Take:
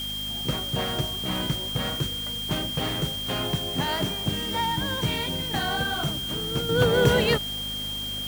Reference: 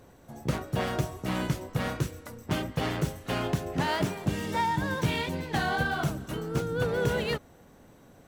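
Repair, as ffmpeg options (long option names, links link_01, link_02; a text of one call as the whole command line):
ffmpeg -i in.wav -af "bandreject=frequency=51.3:width_type=h:width=4,bandreject=frequency=102.6:width_type=h:width=4,bandreject=frequency=153.9:width_type=h:width=4,bandreject=frequency=205.2:width_type=h:width=4,bandreject=frequency=256.5:width_type=h:width=4,bandreject=frequency=3200:width=30,afwtdn=0.0079,asetnsamples=nb_out_samples=441:pad=0,asendcmd='6.69 volume volume -7.5dB',volume=0dB" out.wav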